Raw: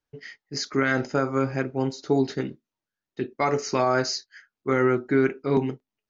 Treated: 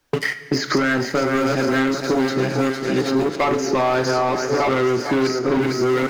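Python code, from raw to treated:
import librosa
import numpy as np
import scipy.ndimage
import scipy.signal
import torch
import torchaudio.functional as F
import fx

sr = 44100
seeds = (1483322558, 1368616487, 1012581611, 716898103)

y = fx.reverse_delay(x, sr, ms=674, wet_db=-2)
y = fx.echo_thinned(y, sr, ms=454, feedback_pct=50, hz=200.0, wet_db=-11.0)
y = fx.leveller(y, sr, passes=1)
y = fx.high_shelf(y, sr, hz=3400.0, db=-6.5, at=(3.25, 5.62))
y = fx.leveller(y, sr, passes=2)
y = fx.low_shelf(y, sr, hz=150.0, db=-3.0)
y = fx.rev_double_slope(y, sr, seeds[0], early_s=0.51, late_s=3.7, knee_db=-17, drr_db=10.0)
y = fx.band_squash(y, sr, depth_pct=100)
y = y * librosa.db_to_amplitude(-4.5)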